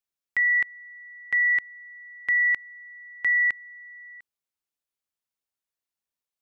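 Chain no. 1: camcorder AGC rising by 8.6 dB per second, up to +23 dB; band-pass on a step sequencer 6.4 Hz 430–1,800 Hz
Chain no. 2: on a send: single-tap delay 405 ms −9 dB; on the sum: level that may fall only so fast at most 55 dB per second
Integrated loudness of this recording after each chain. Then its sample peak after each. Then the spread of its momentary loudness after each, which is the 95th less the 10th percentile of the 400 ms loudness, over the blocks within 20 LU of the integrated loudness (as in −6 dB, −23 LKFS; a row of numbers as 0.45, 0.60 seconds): −30.5, −23.0 LKFS; −19.5, −16.0 dBFS; 24, 11 LU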